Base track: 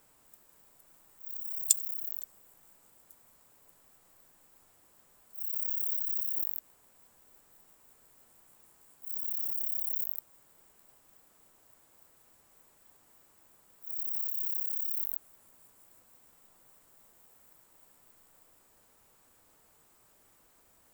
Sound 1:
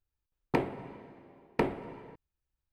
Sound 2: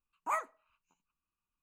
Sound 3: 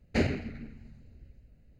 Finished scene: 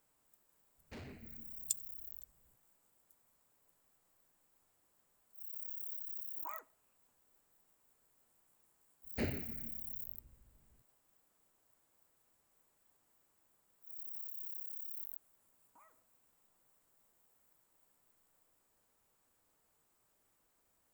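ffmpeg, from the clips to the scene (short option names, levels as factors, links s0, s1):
-filter_complex "[3:a]asplit=2[s0][s1];[2:a]asplit=2[s2][s3];[0:a]volume=0.251[s4];[s0]asoftclip=type=hard:threshold=0.0282[s5];[s2]alimiter=level_in=1.68:limit=0.0631:level=0:latency=1:release=24,volume=0.596[s6];[s3]acompressor=threshold=0.00447:ratio=6:attack=3.2:release=140:knee=1:detection=peak[s7];[s5]atrim=end=1.79,asetpts=PTS-STARTPTS,volume=0.15,afade=t=in:d=0.004:c=hsin,afade=t=out:st=1.786:d=0.004:c=hsin,adelay=770[s8];[s6]atrim=end=1.62,asetpts=PTS-STARTPTS,volume=0.282,afade=t=in:d=0.004:c=hsin,afade=t=out:st=1.616:d=0.004:c=hsin,adelay=272538S[s9];[s1]atrim=end=1.79,asetpts=PTS-STARTPTS,volume=0.282,afade=t=in:d=0.004:c=hsin,afade=t=out:st=1.786:d=0.004:c=hsin,adelay=9030[s10];[s7]atrim=end=1.62,asetpts=PTS-STARTPTS,volume=0.158,afade=t=in:d=0.004:c=hsin,afade=t=out:st=1.616:d=0.004:c=hsin,adelay=15490[s11];[s4][s8][s9][s10][s11]amix=inputs=5:normalize=0"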